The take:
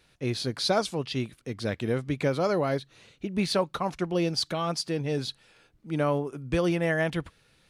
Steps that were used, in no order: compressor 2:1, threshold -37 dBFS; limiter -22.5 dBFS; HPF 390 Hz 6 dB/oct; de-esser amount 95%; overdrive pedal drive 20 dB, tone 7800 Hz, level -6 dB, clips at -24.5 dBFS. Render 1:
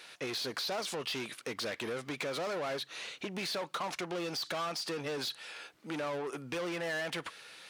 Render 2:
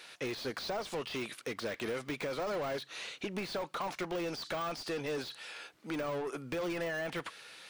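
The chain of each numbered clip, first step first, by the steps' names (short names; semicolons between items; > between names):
de-esser > limiter > overdrive pedal > HPF > compressor; HPF > overdrive pedal > de-esser > limiter > compressor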